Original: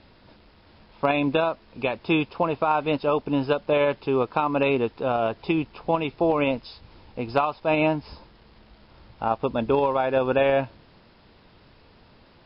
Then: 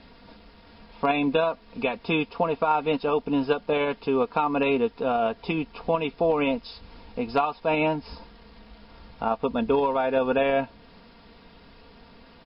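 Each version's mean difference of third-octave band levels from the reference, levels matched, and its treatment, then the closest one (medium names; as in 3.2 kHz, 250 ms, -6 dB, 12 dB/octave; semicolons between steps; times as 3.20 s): 2.0 dB: comb 4.3 ms, depth 59%; in parallel at -1 dB: compression, threshold -34 dBFS, peak gain reduction 17.5 dB; on the sum: trim -3.5 dB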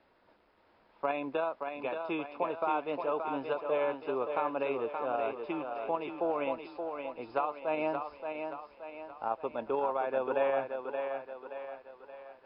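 6.5 dB: three-band isolator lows -16 dB, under 320 Hz, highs -13 dB, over 2.3 kHz; thinning echo 575 ms, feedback 49%, high-pass 210 Hz, level -5.5 dB; trim -8.5 dB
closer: first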